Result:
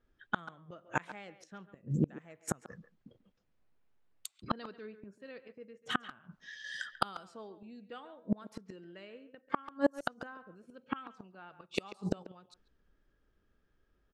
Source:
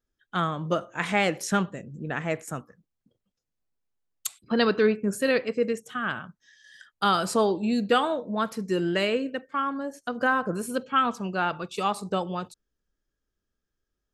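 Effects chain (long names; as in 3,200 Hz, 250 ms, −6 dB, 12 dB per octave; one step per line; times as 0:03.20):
gate with flip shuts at −25 dBFS, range −35 dB
far-end echo of a speakerphone 140 ms, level −13 dB
low-pass that shuts in the quiet parts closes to 2,600 Hz, open at −43 dBFS
level +9.5 dB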